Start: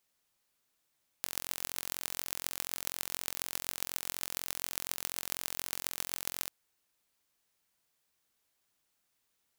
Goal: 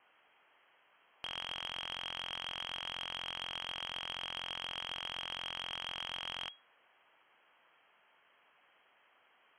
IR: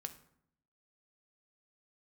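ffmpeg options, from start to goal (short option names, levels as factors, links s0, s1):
-filter_complex "[0:a]lowpass=f=2800:t=q:w=0.5098,lowpass=f=2800:t=q:w=0.6013,lowpass=f=2800:t=q:w=0.9,lowpass=f=2800:t=q:w=2.563,afreqshift=-3300,asplit=2[s0][s1];[s1]highpass=f=720:p=1,volume=15.8,asoftclip=type=tanh:threshold=0.0631[s2];[s0][s2]amix=inputs=2:normalize=0,lowpass=f=1200:p=1,volume=0.501,asoftclip=type=tanh:threshold=0.0133,volume=2"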